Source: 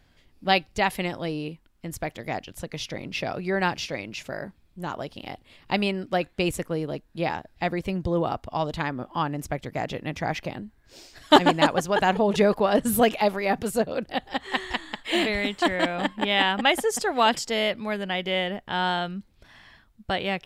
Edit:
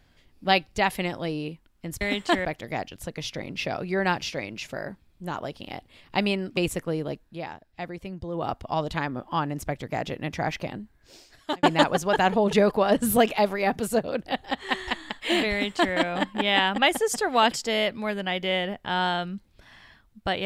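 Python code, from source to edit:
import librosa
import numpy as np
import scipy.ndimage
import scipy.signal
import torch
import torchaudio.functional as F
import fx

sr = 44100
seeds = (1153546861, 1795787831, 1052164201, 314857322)

y = fx.edit(x, sr, fx.cut(start_s=6.13, length_s=0.27),
    fx.fade_down_up(start_s=7.05, length_s=1.28, db=-8.5, fade_s=0.16),
    fx.fade_out_span(start_s=10.53, length_s=0.93, curve='qsin'),
    fx.duplicate(start_s=15.34, length_s=0.44, to_s=2.01), tone=tone)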